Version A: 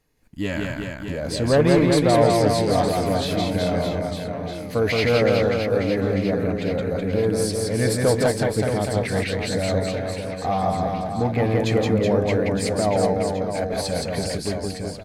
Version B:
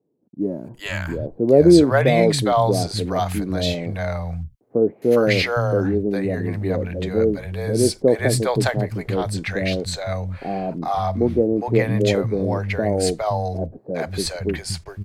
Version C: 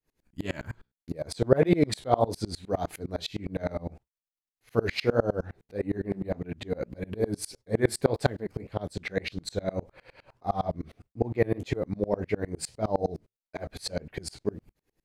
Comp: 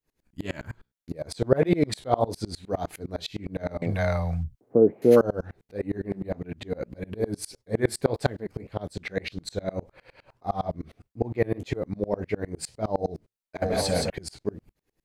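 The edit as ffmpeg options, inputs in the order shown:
-filter_complex "[2:a]asplit=3[s0][s1][s2];[s0]atrim=end=3.822[s3];[1:a]atrim=start=3.818:end=5.212[s4];[s1]atrim=start=5.208:end=13.622[s5];[0:a]atrim=start=13.618:end=14.102[s6];[s2]atrim=start=14.098[s7];[s3][s4]acrossfade=d=0.004:c1=hsin:c2=hsin[s8];[s8][s5]acrossfade=d=0.004:c1=hsin:c2=hsin[s9];[s9][s6]acrossfade=d=0.004:c1=hsin:c2=hsin[s10];[s10][s7]acrossfade=d=0.004:c1=hsin:c2=hsin"

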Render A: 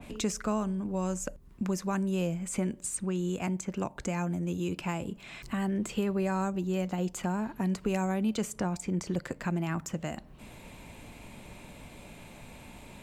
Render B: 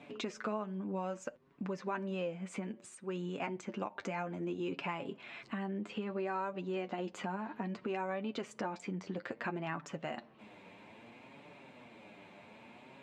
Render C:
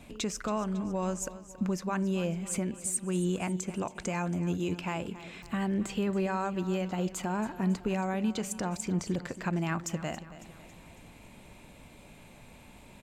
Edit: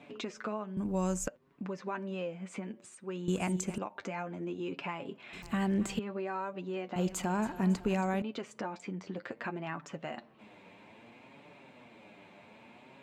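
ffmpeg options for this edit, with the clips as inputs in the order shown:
-filter_complex "[2:a]asplit=3[s0][s1][s2];[1:a]asplit=5[s3][s4][s5][s6][s7];[s3]atrim=end=0.772[s8];[0:a]atrim=start=0.768:end=1.282[s9];[s4]atrim=start=1.278:end=3.282[s10];[s0]atrim=start=3.278:end=3.782[s11];[s5]atrim=start=3.778:end=5.332[s12];[s1]atrim=start=5.328:end=5.992[s13];[s6]atrim=start=5.988:end=6.962[s14];[s2]atrim=start=6.958:end=8.222[s15];[s7]atrim=start=8.218[s16];[s8][s9]acrossfade=d=0.004:c1=hsin:c2=hsin[s17];[s17][s10]acrossfade=d=0.004:c1=hsin:c2=hsin[s18];[s18][s11]acrossfade=d=0.004:c1=hsin:c2=hsin[s19];[s19][s12]acrossfade=d=0.004:c1=hsin:c2=hsin[s20];[s20][s13]acrossfade=d=0.004:c1=hsin:c2=hsin[s21];[s21][s14]acrossfade=d=0.004:c1=hsin:c2=hsin[s22];[s22][s15]acrossfade=d=0.004:c1=hsin:c2=hsin[s23];[s23][s16]acrossfade=d=0.004:c1=hsin:c2=hsin"

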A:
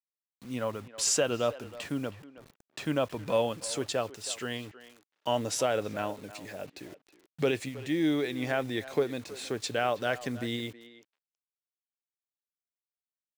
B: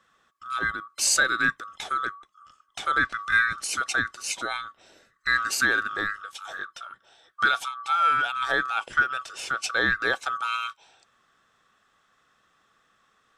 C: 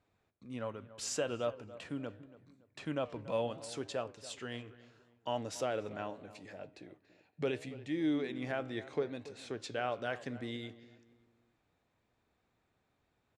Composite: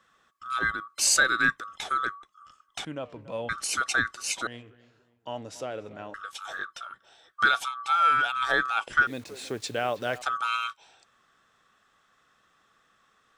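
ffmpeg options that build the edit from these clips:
-filter_complex "[2:a]asplit=2[s0][s1];[1:a]asplit=4[s2][s3][s4][s5];[s2]atrim=end=2.852[s6];[s0]atrim=start=2.848:end=3.492[s7];[s3]atrim=start=3.488:end=4.472[s8];[s1]atrim=start=4.468:end=6.142[s9];[s4]atrim=start=6.138:end=9.072[s10];[0:a]atrim=start=9.068:end=10.222[s11];[s5]atrim=start=10.218[s12];[s6][s7]acrossfade=d=0.004:c1=hsin:c2=hsin[s13];[s13][s8]acrossfade=d=0.004:c1=hsin:c2=hsin[s14];[s14][s9]acrossfade=d=0.004:c1=hsin:c2=hsin[s15];[s15][s10]acrossfade=d=0.004:c1=hsin:c2=hsin[s16];[s16][s11]acrossfade=d=0.004:c1=hsin:c2=hsin[s17];[s17][s12]acrossfade=d=0.004:c1=hsin:c2=hsin"

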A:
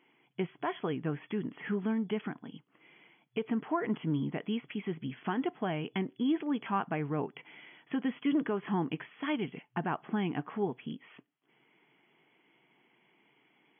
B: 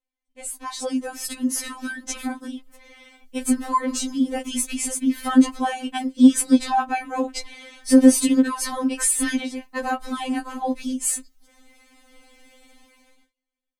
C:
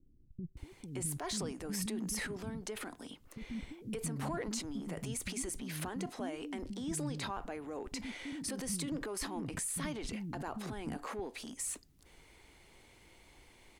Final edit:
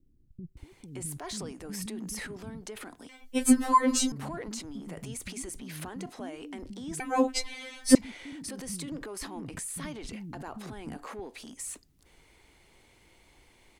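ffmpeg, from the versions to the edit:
-filter_complex "[1:a]asplit=2[s0][s1];[2:a]asplit=3[s2][s3][s4];[s2]atrim=end=3.092[s5];[s0]atrim=start=3.088:end=4.122[s6];[s3]atrim=start=4.118:end=7.002[s7];[s1]atrim=start=6.998:end=7.952[s8];[s4]atrim=start=7.948[s9];[s5][s6]acrossfade=d=0.004:c1=hsin:c2=hsin[s10];[s10][s7]acrossfade=d=0.004:c1=hsin:c2=hsin[s11];[s11][s8]acrossfade=d=0.004:c1=hsin:c2=hsin[s12];[s12][s9]acrossfade=d=0.004:c1=hsin:c2=hsin"

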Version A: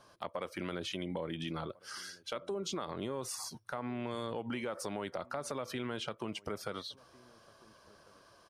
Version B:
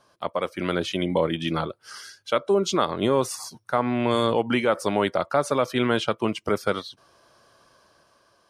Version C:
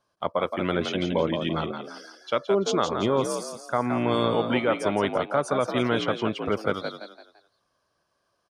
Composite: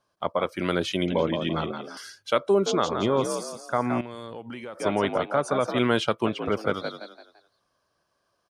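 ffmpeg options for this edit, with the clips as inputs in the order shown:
-filter_complex "[1:a]asplit=3[s0][s1][s2];[2:a]asplit=5[s3][s4][s5][s6][s7];[s3]atrim=end=0.492[s8];[s0]atrim=start=0.488:end=1.082[s9];[s4]atrim=start=1.078:end=1.972[s10];[s1]atrim=start=1.968:end=2.662[s11];[s5]atrim=start=2.658:end=4.012[s12];[0:a]atrim=start=4.008:end=4.802[s13];[s6]atrim=start=4.798:end=5.792[s14];[s2]atrim=start=5.788:end=6.262[s15];[s7]atrim=start=6.258[s16];[s8][s9]acrossfade=d=0.004:c1=hsin:c2=hsin[s17];[s17][s10]acrossfade=d=0.004:c1=hsin:c2=hsin[s18];[s18][s11]acrossfade=d=0.004:c1=hsin:c2=hsin[s19];[s19][s12]acrossfade=d=0.004:c1=hsin:c2=hsin[s20];[s20][s13]acrossfade=d=0.004:c1=hsin:c2=hsin[s21];[s21][s14]acrossfade=d=0.004:c1=hsin:c2=hsin[s22];[s22][s15]acrossfade=d=0.004:c1=hsin:c2=hsin[s23];[s23][s16]acrossfade=d=0.004:c1=hsin:c2=hsin"

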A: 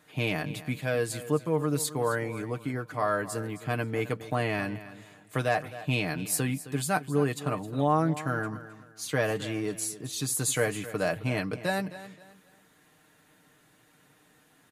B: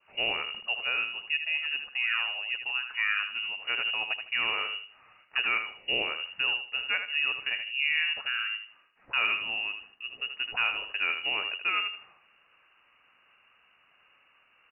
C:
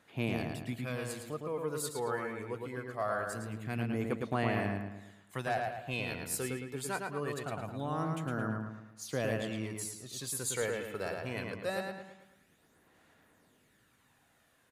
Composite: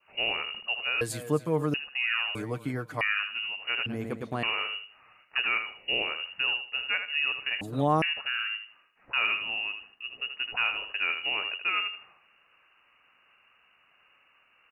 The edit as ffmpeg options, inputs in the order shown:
-filter_complex "[0:a]asplit=3[s0][s1][s2];[1:a]asplit=5[s3][s4][s5][s6][s7];[s3]atrim=end=1.012[s8];[s0]atrim=start=1.008:end=1.742[s9];[s4]atrim=start=1.738:end=2.352[s10];[s1]atrim=start=2.348:end=3.012[s11];[s5]atrim=start=3.008:end=3.862[s12];[2:a]atrim=start=3.858:end=4.432[s13];[s6]atrim=start=4.428:end=7.612[s14];[s2]atrim=start=7.608:end=8.022[s15];[s7]atrim=start=8.018[s16];[s8][s9]acrossfade=d=0.004:c1=hsin:c2=hsin[s17];[s17][s10]acrossfade=d=0.004:c1=hsin:c2=hsin[s18];[s18][s11]acrossfade=d=0.004:c1=hsin:c2=hsin[s19];[s19][s12]acrossfade=d=0.004:c1=hsin:c2=hsin[s20];[s20][s13]acrossfade=d=0.004:c1=hsin:c2=hsin[s21];[s21][s14]acrossfade=d=0.004:c1=hsin:c2=hsin[s22];[s22][s15]acrossfade=d=0.004:c1=hsin:c2=hsin[s23];[s23][s16]acrossfade=d=0.004:c1=hsin:c2=hsin"

